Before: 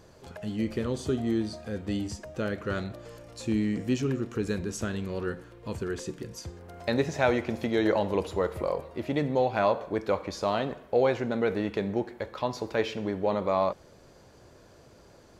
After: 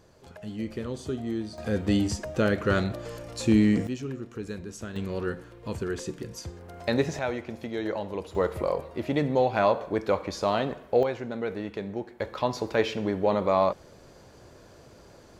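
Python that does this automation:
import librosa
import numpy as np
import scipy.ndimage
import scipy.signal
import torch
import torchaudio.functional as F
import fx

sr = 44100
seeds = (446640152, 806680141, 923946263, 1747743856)

y = fx.gain(x, sr, db=fx.steps((0.0, -3.5), (1.58, 7.0), (3.87, -6.0), (4.96, 1.5), (7.19, -6.0), (8.35, 2.0), (11.03, -4.5), (12.2, 3.0)))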